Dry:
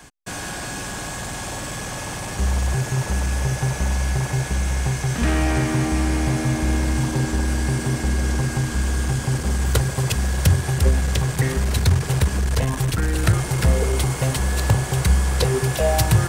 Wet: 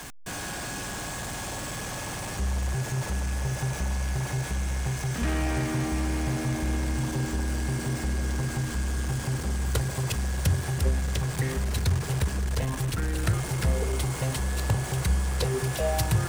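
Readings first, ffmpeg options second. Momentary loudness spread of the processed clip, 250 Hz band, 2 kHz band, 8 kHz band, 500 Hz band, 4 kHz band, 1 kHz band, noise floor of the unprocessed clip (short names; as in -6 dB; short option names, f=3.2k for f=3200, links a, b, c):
6 LU, -7.0 dB, -6.5 dB, -6.5 dB, -7.0 dB, -6.5 dB, -7.0 dB, -30 dBFS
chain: -af "aeval=exprs='val(0)+0.5*0.0422*sgn(val(0))':c=same,volume=-8.5dB"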